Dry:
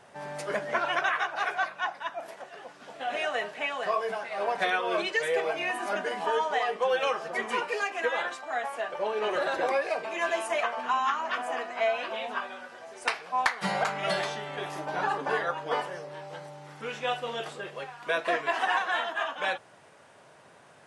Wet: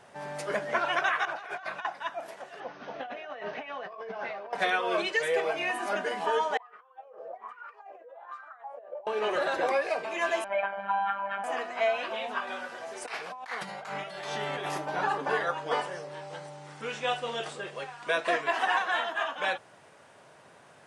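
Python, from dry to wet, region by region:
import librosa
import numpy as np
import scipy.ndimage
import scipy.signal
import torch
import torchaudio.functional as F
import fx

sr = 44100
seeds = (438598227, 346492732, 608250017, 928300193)

y = fx.chain(x, sr, fx.high_shelf(hz=9800.0, db=-6.5),
    fx.over_compress(threshold_db=-39.0, ratio=-1.0), at=(1.25, 1.85))
y = fx.chain(y, sr, fx.over_compress(threshold_db=-38.0, ratio=-1.0),
    fx.brickwall_lowpass(high_hz=6500.0),
    fx.high_shelf(hz=3200.0, db=-11.0), at=(2.6, 4.53))
y = fx.chain(y, sr, fx.over_compress(threshold_db=-37.0, ratio=-1.0),
    fx.wah_lfo(hz=1.2, low_hz=510.0, high_hz=1400.0, q=7.8), at=(6.57, 9.07))
y = fx.chain(y, sr, fx.gaussian_blur(sigma=3.4),
    fx.comb(ms=1.3, depth=0.76),
    fx.robotise(hz=198.0), at=(10.44, 11.44))
y = fx.chain(y, sr, fx.over_compress(threshold_db=-37.0, ratio=-1.0),
    fx.low_shelf(hz=65.0, db=-10.0), at=(12.47, 14.78))
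y = fx.chain(y, sr, fx.steep_lowpass(hz=10000.0, slope=72),
    fx.high_shelf(hz=6100.0, db=6.0), at=(15.4, 18.44))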